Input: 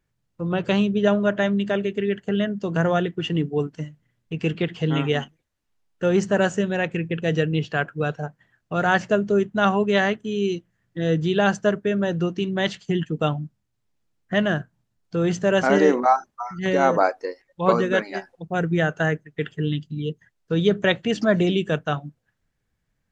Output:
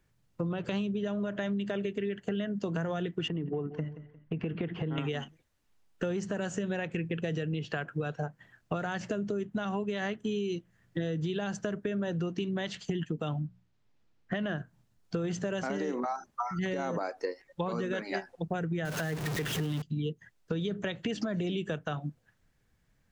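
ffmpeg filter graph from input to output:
-filter_complex "[0:a]asettb=1/sr,asplit=3[s0][s1][s2];[s0]atrim=end=3.284[s3];[s1]atrim=start=3.28:end=4.98,asetpts=PTS-STARTPTS,afade=t=in:d=0.004:c=qsin,afade=t=out:st=1.696:d=0.004:c=qsin,lowpass=1800,acompressor=threshold=0.0398:ratio=4:attack=3.2:release=140:knee=1:detection=peak,aecho=1:1:177|354|531:0.141|0.0452|0.0145,atrim=end_sample=74970[s4];[s2]atrim=start=4.976[s5];[s3][s4]acrossfade=d=0.004:c1=hsin:c2=qsin[s6];[s6][s5]acrossfade=d=0.004:c1=qsin:c2=hsin,asettb=1/sr,asplit=3[s7][s8][s9];[s7]atrim=end=13.394[s10];[s8]atrim=start=13.39:end=14.58,asetpts=PTS-STARTPTS,afade=t=in:d=0.004:c=qsin,afade=t=out:st=1.186:d=0.004:c=qsin,lowpass=4800,bandreject=f=60:t=h:w=6,bandreject=f=120:t=h:w=6,bandreject=f=180:t=h:w=6[s11];[s9]atrim=start=14.576[s12];[s10][s11]acrossfade=d=0.004:c1=hsin:c2=qsin[s13];[s13][s12]acrossfade=d=0.004:c1=qsin:c2=hsin,asettb=1/sr,asplit=3[s14][s15][s16];[s14]atrim=end=18.854[s17];[s15]atrim=start=18.85:end=19.82,asetpts=PTS-STARTPTS,afade=t=in:d=0.004:c=qsin,afade=t=out:st=0.966:d=0.004:c=qsin,aeval=exprs='val(0)+0.5*0.0562*sgn(val(0))':c=same,highpass=41[s18];[s16]atrim=start=19.816[s19];[s17][s18]acrossfade=d=0.004:c1=hsin:c2=qsin[s20];[s20][s19]acrossfade=d=0.004:c1=qsin:c2=hsin,acrossover=split=300|3000[s21][s22][s23];[s22]acompressor=threshold=0.0891:ratio=6[s24];[s21][s24][s23]amix=inputs=3:normalize=0,alimiter=limit=0.126:level=0:latency=1:release=131,acompressor=threshold=0.02:ratio=6,volume=1.58"

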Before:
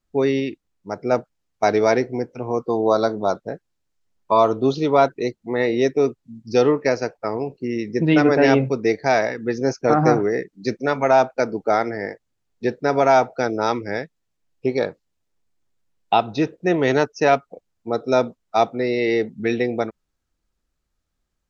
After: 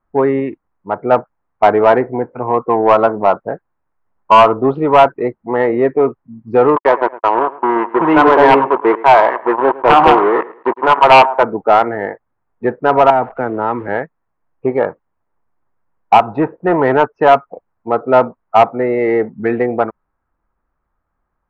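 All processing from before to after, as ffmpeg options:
-filter_complex "[0:a]asettb=1/sr,asplit=3[s0][s1][s2];[s0]atrim=end=6.764[s3];[s1]atrim=start=6.76:end=11.43,asetpts=PTS-STARTPTS,afade=t=in:d=0.004:c=qsin,afade=t=out:st=4.666:d=0.004:c=qsin,acrusher=bits=3:mix=0:aa=0.5,highpass=300,equalizer=f=360:t=q:w=4:g=6,equalizer=f=980:t=q:w=4:g=10,equalizer=f=3000:t=q:w=4:g=5,lowpass=f=4400:w=0.5412,lowpass=f=4400:w=1.3066,aecho=1:1:109|218:0.106|0.0318,atrim=end_sample=205947[s4];[s2]atrim=start=11.426[s5];[s3][s4]acrossfade=d=0.004:c1=hsin:c2=qsin[s6];[s6][s5]acrossfade=d=0.004:c1=qsin:c2=hsin,asettb=1/sr,asplit=3[s7][s8][s9];[s7]atrim=end=13.104[s10];[s8]atrim=start=13.1:end=13.88,asetpts=PTS-STARTPTS,afade=t=in:d=0.004:c=qsin,afade=t=out:st=0.776:d=0.004:c=qsin,acrossover=split=380|3000[s11][s12][s13];[s12]acompressor=threshold=0.0224:ratio=2:attack=3.2:release=140:knee=2.83:detection=peak[s14];[s11][s14][s13]amix=inputs=3:normalize=0,acrusher=bits=8:dc=4:mix=0:aa=0.000001[s15];[s9]atrim=start=13.876[s16];[s10][s15]acrossfade=d=0.004:c1=hsin:c2=qsin[s17];[s17][s16]acrossfade=d=0.004:c1=qsin:c2=hsin,asettb=1/sr,asplit=3[s18][s19][s20];[s18]atrim=end=16.354[s21];[s19]atrim=start=16.35:end=16.82,asetpts=PTS-STARTPTS,afade=t=in:d=0.004:c=qsin,afade=t=out:st=0.466:d=0.004:c=qsin,equalizer=f=880:w=4.1:g=6,volume=3.98,asoftclip=hard,volume=0.251[s22];[s20]atrim=start=16.816[s23];[s21][s22]acrossfade=d=0.004:c1=hsin:c2=qsin[s24];[s24][s23]acrossfade=d=0.004:c1=qsin:c2=hsin,lowpass=f=1900:w=0.5412,lowpass=f=1900:w=1.3066,equalizer=f=1000:w=1.1:g=12,acontrast=21,volume=0.891"

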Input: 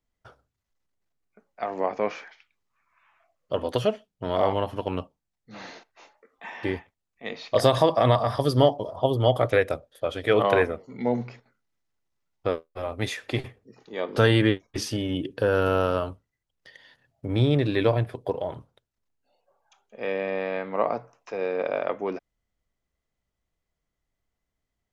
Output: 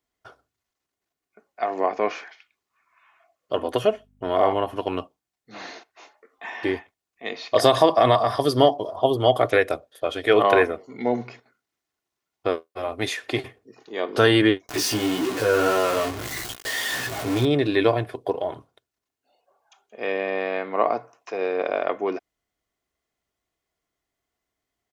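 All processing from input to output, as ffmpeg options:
-filter_complex "[0:a]asettb=1/sr,asplit=3[s0][s1][s2];[s0]atrim=end=3.594[s3];[s1]atrim=start=3.59:end=4.76,asetpts=PTS-STARTPTS,afade=t=in:d=0.004:c=qsin,afade=t=out:st=1.166:d=0.004:c=qsin,equalizer=f=4500:t=o:w=1:g=-7.5,aeval=exprs='val(0)+0.002*(sin(2*PI*50*n/s)+sin(2*PI*2*50*n/s)/2+sin(2*PI*3*50*n/s)/3+sin(2*PI*4*50*n/s)/4+sin(2*PI*5*50*n/s)/5)':c=same[s4];[s2]atrim=start=4.756[s5];[s3][s4]acrossfade=d=0.004:c1=hsin:c2=qsin[s6];[s6][s5]acrossfade=d=0.004:c1=qsin:c2=hsin,asettb=1/sr,asplit=3[s7][s8][s9];[s7]atrim=end=14.694[s10];[s8]atrim=start=14.69:end=17.45,asetpts=PTS-STARTPTS,afade=t=in:d=0.004:c=qsin,afade=t=out:st=2.756:d=0.004:c=qsin,aeval=exprs='val(0)+0.5*0.0708*sgn(val(0))':c=same,flanger=delay=15.5:depth=3:speed=1.8[s11];[s9]atrim=start=17.446[s12];[s10][s11]acrossfade=d=0.004:c1=hsin:c2=qsin[s13];[s13][s12]acrossfade=d=0.004:c1=qsin:c2=hsin,highpass=f=250:p=1,aecho=1:1:2.8:0.35,volume=1.58"

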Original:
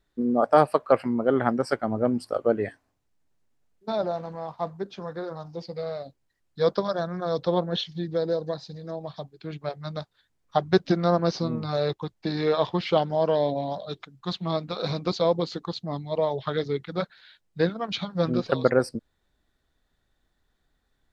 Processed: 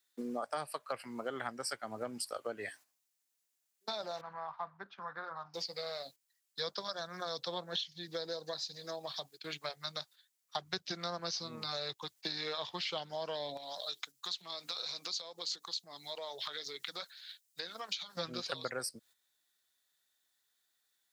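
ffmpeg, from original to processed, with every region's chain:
-filter_complex "[0:a]asettb=1/sr,asplit=3[s0][s1][s2];[s0]atrim=end=4.214[s3];[s1]atrim=start=4.21:end=5.54,asetpts=PTS-STARTPTS,afade=t=in:d=0.004:c=qsin,afade=t=out:st=1.326:d=0.004:c=qsin,lowpass=f=1300:t=q:w=1.6,equalizer=f=410:w=0.93:g=-13[s4];[s2]atrim=start=5.536[s5];[s3][s4]acrossfade=d=0.004:c1=hsin:c2=qsin[s6];[s6][s5]acrossfade=d=0.004:c1=qsin:c2=hsin,asettb=1/sr,asplit=3[s7][s8][s9];[s7]atrim=end=13.574[s10];[s8]atrim=start=13.57:end=18.17,asetpts=PTS-STARTPTS,afade=t=in:d=0.004:c=qsin,afade=t=out:st=4.596:d=0.004:c=qsin,acompressor=threshold=0.0178:ratio=5:attack=3.2:release=140:knee=1:detection=peak,bass=f=250:g=-8,treble=f=4000:g=6[s11];[s9]atrim=start=18.166[s12];[s10][s11]acrossfade=d=0.004:c1=hsin:c2=qsin[s13];[s13][s12]acrossfade=d=0.004:c1=qsin:c2=hsin,agate=range=0.316:threshold=0.00398:ratio=16:detection=peak,aderivative,acrossover=split=140[s14][s15];[s15]acompressor=threshold=0.00224:ratio=5[s16];[s14][s16]amix=inputs=2:normalize=0,volume=6.31"

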